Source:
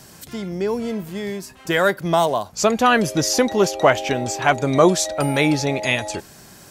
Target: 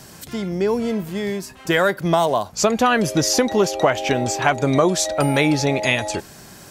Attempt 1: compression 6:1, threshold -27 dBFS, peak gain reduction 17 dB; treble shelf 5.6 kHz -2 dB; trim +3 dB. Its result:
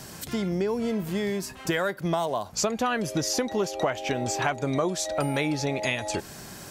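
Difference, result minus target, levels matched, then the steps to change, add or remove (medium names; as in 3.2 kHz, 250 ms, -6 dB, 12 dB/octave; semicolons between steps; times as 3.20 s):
compression: peak gain reduction +9.5 dB
change: compression 6:1, threshold -15.5 dBFS, peak gain reduction 7 dB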